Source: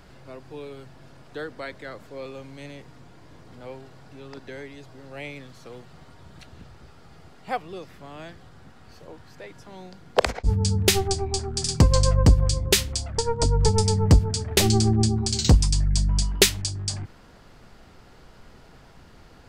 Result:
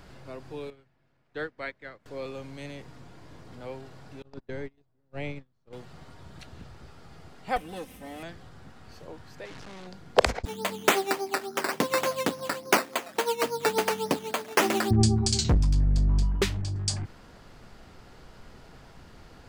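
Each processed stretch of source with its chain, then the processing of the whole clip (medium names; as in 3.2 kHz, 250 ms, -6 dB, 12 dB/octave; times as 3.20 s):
0.70–2.06 s: low-pass 3.9 kHz 6 dB/octave + peaking EQ 2.1 kHz +6 dB 0.87 oct + upward expansion 2.5:1, over -45 dBFS
4.22–5.73 s: low-pass 8.8 kHz + gate -39 dBFS, range -33 dB + tilt EQ -2 dB/octave
7.56–8.23 s: comb filter that takes the minimum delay 0.33 ms + resonant high shelf 7.6 kHz +8.5 dB, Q 1.5 + comb 3.9 ms, depth 72%
9.45–9.87 s: one-bit comparator + low-pass 5.3 kHz
10.45–14.91 s: bass shelf 320 Hz -6 dB + decimation with a swept rate 11×, swing 60% 3.5 Hz + high-pass 230 Hz 24 dB/octave
15.44–16.76 s: companding laws mixed up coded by mu + low-pass 1 kHz 6 dB/octave + overload inside the chain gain 18 dB
whole clip: none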